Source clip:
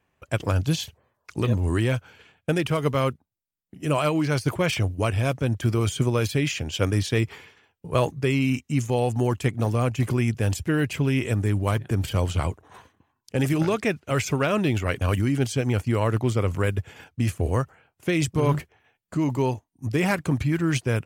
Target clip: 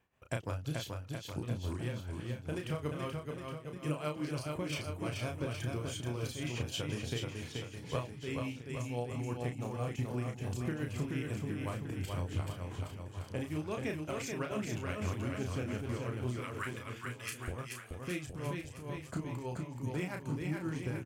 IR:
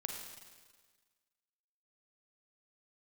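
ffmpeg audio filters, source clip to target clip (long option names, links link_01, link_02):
-filter_complex "[0:a]asettb=1/sr,asplit=3[link_01][link_02][link_03];[link_01]atrim=end=16.344[link_04];[link_02]atrim=start=16.34:end=17.48,asetpts=PTS-STARTPTS,afade=type=in:duration=0.004:curve=qsin,afade=type=out:start_time=1.136:duration=0.004:curve=qsin,highpass=frequency=1200:width=0.5412,highpass=frequency=1200:width=1.3066[link_05];[link_03]atrim=start=17.476[link_06];[link_04][link_05]acrossfade=duration=0.004:curve1=hsin:curve2=qsin[link_07];[link_07][link_06]acrossfade=duration=0.004:curve1=qsin:curve2=hsin,acompressor=threshold=-29dB:ratio=10,tremolo=f=5.9:d=0.74,asplit=2[link_08][link_09];[link_09]adelay=33,volume=-5dB[link_10];[link_08][link_10]amix=inputs=2:normalize=0,aecho=1:1:430|817|1165|1479|1761:0.631|0.398|0.251|0.158|0.1,volume=-4dB"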